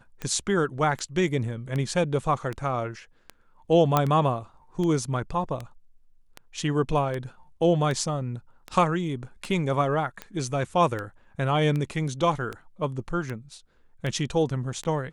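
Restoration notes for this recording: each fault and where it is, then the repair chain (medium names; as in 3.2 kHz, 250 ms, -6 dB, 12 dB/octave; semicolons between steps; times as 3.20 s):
tick 78 rpm -19 dBFS
3.97 s: pop -7 dBFS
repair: de-click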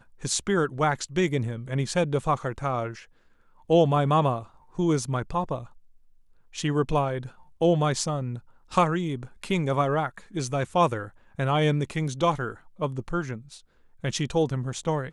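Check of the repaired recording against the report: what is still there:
nothing left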